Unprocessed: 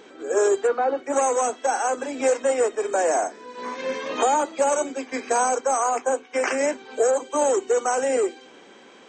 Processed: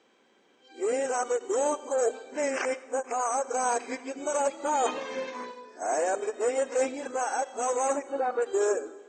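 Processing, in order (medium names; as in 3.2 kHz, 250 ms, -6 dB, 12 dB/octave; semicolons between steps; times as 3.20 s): reverse the whole clip; spectral noise reduction 10 dB; on a send at -17 dB: reverberation RT60 1.6 s, pre-delay 28 ms; on the sum: endings held to a fixed fall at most 460 dB/s; trim -6 dB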